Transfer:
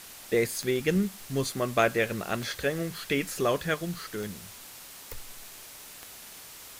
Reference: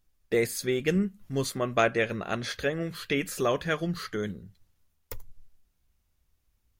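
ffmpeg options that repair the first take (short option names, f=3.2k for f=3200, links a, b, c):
-af "adeclick=t=4,afwtdn=0.0056,asetnsamples=n=441:p=0,asendcmd='3.74 volume volume 3.5dB',volume=0dB"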